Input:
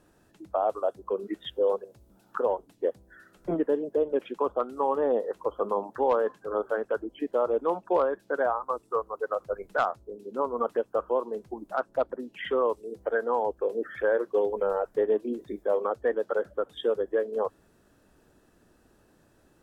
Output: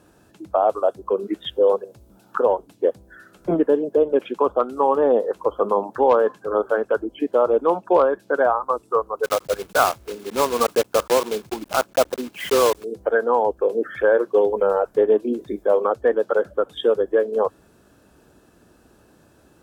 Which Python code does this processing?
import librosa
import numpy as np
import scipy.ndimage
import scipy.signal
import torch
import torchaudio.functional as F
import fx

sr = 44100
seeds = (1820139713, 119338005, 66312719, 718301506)

y = fx.block_float(x, sr, bits=3, at=(9.23, 12.83), fade=0.02)
y = scipy.signal.sosfilt(scipy.signal.butter(2, 41.0, 'highpass', fs=sr, output='sos'), y)
y = fx.notch(y, sr, hz=1900.0, q=11.0)
y = y * 10.0 ** (8.0 / 20.0)